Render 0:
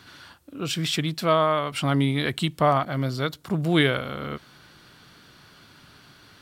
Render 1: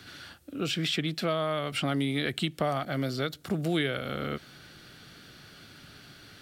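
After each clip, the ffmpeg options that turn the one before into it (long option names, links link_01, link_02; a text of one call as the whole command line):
ffmpeg -i in.wav -filter_complex "[0:a]equalizer=frequency=1000:width_type=o:width=0.36:gain=-11.5,acrossover=split=200|4100[link_01][link_02][link_03];[link_01]acompressor=threshold=-41dB:ratio=4[link_04];[link_02]acompressor=threshold=-29dB:ratio=4[link_05];[link_03]acompressor=threshold=-45dB:ratio=4[link_06];[link_04][link_05][link_06]amix=inputs=3:normalize=0,volume=1.5dB" out.wav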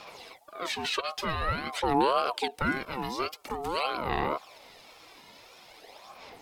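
ffmpeg -i in.wav -af "aphaser=in_gain=1:out_gain=1:delay=2.6:decay=0.6:speed=0.48:type=sinusoidal,aeval=exprs='val(0)*sin(2*PI*750*n/s+750*0.25/1.8*sin(2*PI*1.8*n/s))':channel_layout=same" out.wav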